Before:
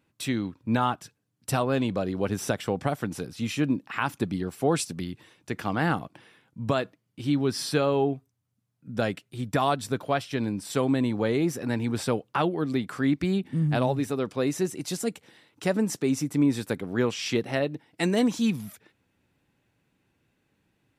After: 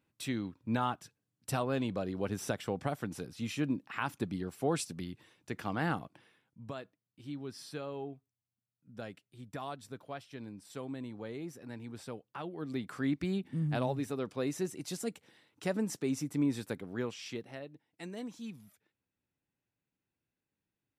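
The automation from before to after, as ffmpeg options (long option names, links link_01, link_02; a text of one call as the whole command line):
ffmpeg -i in.wav -af "volume=1.5dB,afade=type=out:start_time=5.99:duration=0.7:silence=0.334965,afade=type=in:start_time=12.43:duration=0.47:silence=0.354813,afade=type=out:start_time=16.56:duration=1.05:silence=0.281838" out.wav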